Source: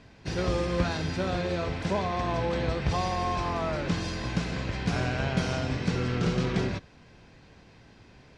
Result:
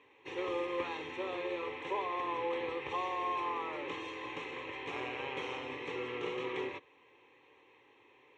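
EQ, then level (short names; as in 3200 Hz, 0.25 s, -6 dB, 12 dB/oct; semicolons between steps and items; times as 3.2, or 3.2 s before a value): BPF 370–4300 Hz; fixed phaser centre 990 Hz, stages 8; -2.0 dB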